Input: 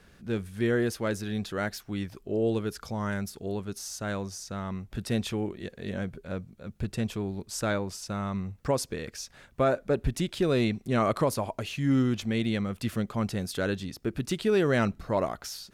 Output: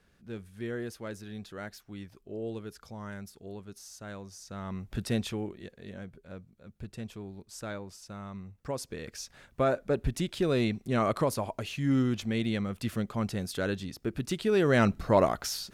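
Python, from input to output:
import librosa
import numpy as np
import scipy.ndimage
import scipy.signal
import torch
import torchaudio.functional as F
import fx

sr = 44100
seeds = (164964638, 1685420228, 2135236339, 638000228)

y = fx.gain(x, sr, db=fx.line((4.25, -10.0), (4.95, 1.0), (5.94, -10.0), (8.59, -10.0), (9.17, -2.0), (14.5, -2.0), (15.01, 4.5)))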